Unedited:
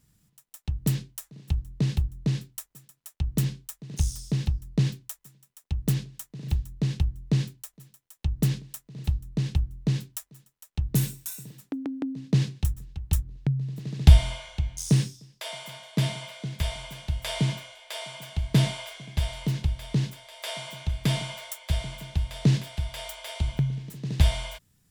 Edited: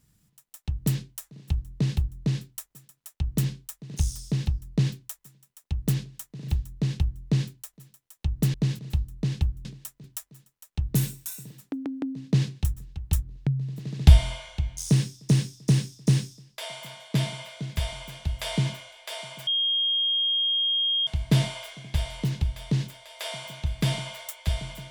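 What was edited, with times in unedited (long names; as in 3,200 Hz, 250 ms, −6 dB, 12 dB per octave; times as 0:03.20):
0:08.54–0:08.93: swap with 0:09.79–0:10.04
0:14.90–0:15.29: repeat, 4 plays
0:18.30: insert tone 3,240 Hz −21.5 dBFS 1.60 s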